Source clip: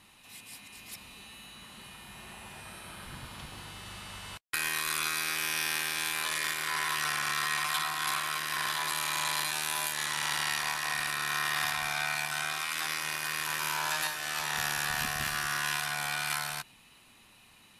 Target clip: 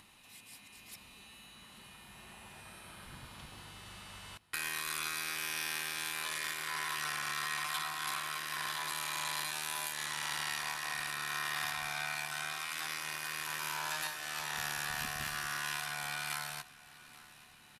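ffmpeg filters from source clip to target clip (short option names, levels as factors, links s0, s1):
-filter_complex "[0:a]acompressor=mode=upward:threshold=0.00355:ratio=2.5,asplit=2[s0][s1];[s1]aecho=0:1:832|1664|2496|3328:0.1|0.054|0.0292|0.0157[s2];[s0][s2]amix=inputs=2:normalize=0,volume=0.501"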